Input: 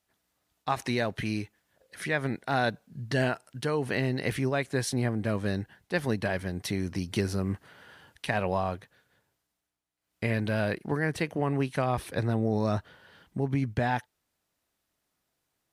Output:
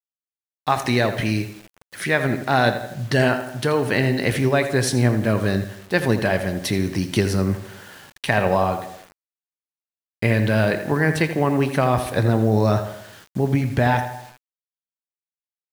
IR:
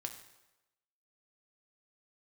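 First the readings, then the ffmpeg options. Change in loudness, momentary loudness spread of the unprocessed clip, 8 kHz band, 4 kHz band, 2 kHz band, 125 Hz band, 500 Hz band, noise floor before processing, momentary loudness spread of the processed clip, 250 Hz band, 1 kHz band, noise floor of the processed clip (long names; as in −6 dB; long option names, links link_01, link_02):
+9.0 dB, 6 LU, +9.5 dB, +9.5 dB, +9.5 dB, +9.5 dB, +9.5 dB, −81 dBFS, 11 LU, +9.0 dB, +9.0 dB, below −85 dBFS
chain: -filter_complex "[0:a]asplit=2[link_01][link_02];[link_02]adelay=82,lowpass=frequency=3600:poles=1,volume=-10.5dB,asplit=2[link_03][link_04];[link_04]adelay=82,lowpass=frequency=3600:poles=1,volume=0.5,asplit=2[link_05][link_06];[link_06]adelay=82,lowpass=frequency=3600:poles=1,volume=0.5,asplit=2[link_07][link_08];[link_08]adelay=82,lowpass=frequency=3600:poles=1,volume=0.5,asplit=2[link_09][link_10];[link_10]adelay=82,lowpass=frequency=3600:poles=1,volume=0.5[link_11];[link_01][link_03][link_05][link_07][link_09][link_11]amix=inputs=6:normalize=0,asplit=2[link_12][link_13];[1:a]atrim=start_sample=2205,afade=type=out:start_time=0.32:duration=0.01,atrim=end_sample=14553,lowshelf=frequency=61:gain=-7.5[link_14];[link_13][link_14]afir=irnorm=-1:irlink=0,volume=1.5dB[link_15];[link_12][link_15]amix=inputs=2:normalize=0,acrusher=bits=7:mix=0:aa=0.000001,volume=3.5dB"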